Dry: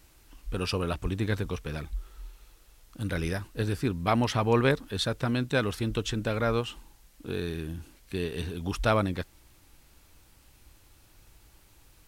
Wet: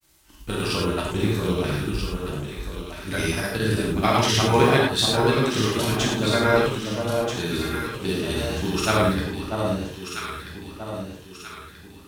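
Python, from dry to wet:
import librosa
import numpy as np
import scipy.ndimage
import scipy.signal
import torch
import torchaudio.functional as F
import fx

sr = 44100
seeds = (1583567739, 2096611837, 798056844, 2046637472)

p1 = fx.law_mismatch(x, sr, coded='A')
p2 = scipy.signal.sosfilt(scipy.signal.butter(2, 61.0, 'highpass', fs=sr, output='sos'), p1)
p3 = fx.high_shelf(p2, sr, hz=3600.0, db=6.5)
p4 = fx.notch(p3, sr, hz=510.0, q=12.0)
p5 = fx.level_steps(p4, sr, step_db=20)
p6 = p4 + F.gain(torch.from_numpy(p5), 1.0).numpy()
p7 = fx.granulator(p6, sr, seeds[0], grain_ms=100.0, per_s=20.0, spray_ms=100.0, spread_st=0)
p8 = p7 + fx.echo_alternate(p7, sr, ms=642, hz=1100.0, feedback_pct=65, wet_db=-3.5, dry=0)
p9 = fx.rev_gated(p8, sr, seeds[1], gate_ms=130, shape='flat', drr_db=-2.5)
y = F.gain(torch.from_numpy(p9), 2.0).numpy()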